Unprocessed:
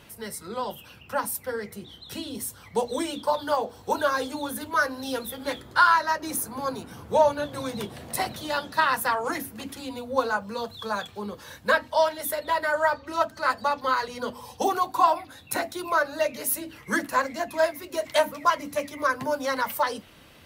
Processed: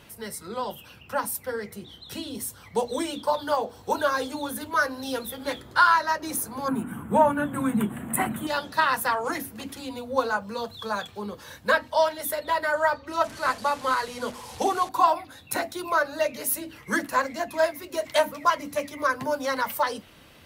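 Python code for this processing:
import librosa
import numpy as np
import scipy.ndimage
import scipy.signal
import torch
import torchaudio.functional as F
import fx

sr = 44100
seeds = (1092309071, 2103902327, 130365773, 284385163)

y = fx.curve_eq(x, sr, hz=(100.0, 230.0, 500.0, 1400.0, 3100.0, 5100.0, 7800.0), db=(0, 13, -4, 7, -3, -29, 4), at=(6.68, 8.47))
y = fx.delta_mod(y, sr, bps=64000, step_db=-35.5, at=(13.24, 14.89))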